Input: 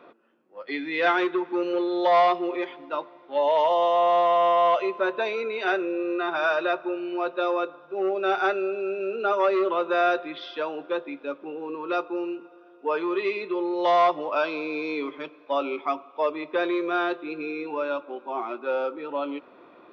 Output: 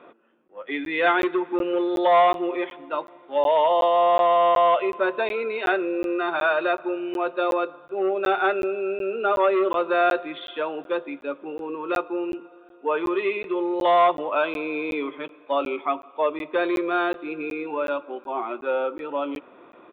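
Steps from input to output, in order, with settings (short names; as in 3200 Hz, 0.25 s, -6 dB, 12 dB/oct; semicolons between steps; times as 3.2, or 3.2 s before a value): downsampling 8000 Hz; crackling interface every 0.37 s, samples 512, zero, from 0.48; gain +2 dB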